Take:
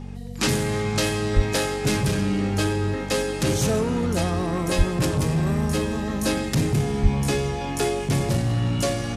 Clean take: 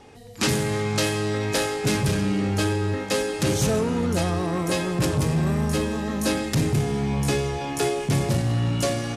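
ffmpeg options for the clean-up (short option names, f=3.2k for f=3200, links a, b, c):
-filter_complex "[0:a]bandreject=f=47.2:t=h:w=4,bandreject=f=94.4:t=h:w=4,bandreject=f=141.6:t=h:w=4,bandreject=f=188.8:t=h:w=4,bandreject=f=236:t=h:w=4,asplit=3[a][b][c];[a]afade=t=out:st=1.35:d=0.02[d];[b]highpass=f=140:w=0.5412,highpass=f=140:w=1.3066,afade=t=in:st=1.35:d=0.02,afade=t=out:st=1.47:d=0.02[e];[c]afade=t=in:st=1.47:d=0.02[f];[d][e][f]amix=inputs=3:normalize=0,asplit=3[g][h][i];[g]afade=t=out:st=4.77:d=0.02[j];[h]highpass=f=140:w=0.5412,highpass=f=140:w=1.3066,afade=t=in:st=4.77:d=0.02,afade=t=out:st=4.89:d=0.02[k];[i]afade=t=in:st=4.89:d=0.02[l];[j][k][l]amix=inputs=3:normalize=0,asplit=3[m][n][o];[m]afade=t=out:st=7.02:d=0.02[p];[n]highpass=f=140:w=0.5412,highpass=f=140:w=1.3066,afade=t=in:st=7.02:d=0.02,afade=t=out:st=7.14:d=0.02[q];[o]afade=t=in:st=7.14:d=0.02[r];[p][q][r]amix=inputs=3:normalize=0"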